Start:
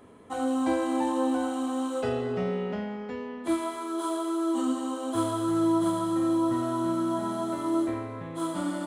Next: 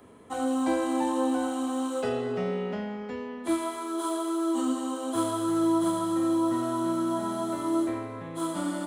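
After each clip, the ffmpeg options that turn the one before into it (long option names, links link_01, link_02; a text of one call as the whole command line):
ffmpeg -i in.wav -filter_complex "[0:a]highshelf=frequency=6300:gain=4.5,acrossover=split=150|770|1700[link_01][link_02][link_03][link_04];[link_01]alimiter=level_in=21dB:limit=-24dB:level=0:latency=1,volume=-21dB[link_05];[link_05][link_02][link_03][link_04]amix=inputs=4:normalize=0" out.wav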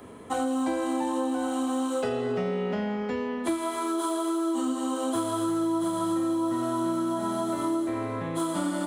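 ffmpeg -i in.wav -af "acompressor=threshold=-32dB:ratio=6,volume=7dB" out.wav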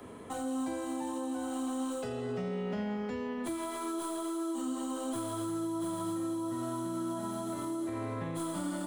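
ffmpeg -i in.wav -filter_complex "[0:a]acrossover=split=190|5300[link_01][link_02][link_03];[link_02]alimiter=level_in=5dB:limit=-24dB:level=0:latency=1:release=111,volume=-5dB[link_04];[link_03]aeval=exprs='clip(val(0),-1,0.00316)':channel_layout=same[link_05];[link_01][link_04][link_05]amix=inputs=3:normalize=0,volume=-2dB" out.wav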